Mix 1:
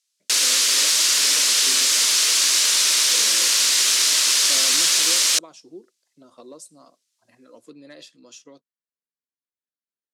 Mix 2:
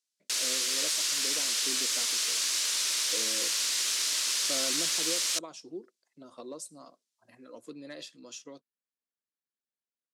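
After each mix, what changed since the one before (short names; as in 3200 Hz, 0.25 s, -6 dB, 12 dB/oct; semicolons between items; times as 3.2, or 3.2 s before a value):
background -11.5 dB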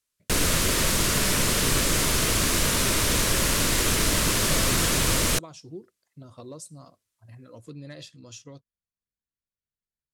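background: remove band-pass 5200 Hz, Q 1.2; master: remove HPF 240 Hz 24 dB/oct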